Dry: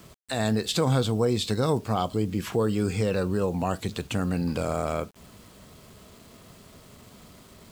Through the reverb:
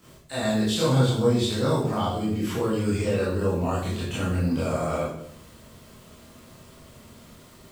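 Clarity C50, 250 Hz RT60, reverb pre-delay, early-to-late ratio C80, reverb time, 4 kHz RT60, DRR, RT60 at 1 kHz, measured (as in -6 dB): 1.0 dB, 0.80 s, 19 ms, 5.5 dB, 0.65 s, 0.60 s, -10.0 dB, 0.65 s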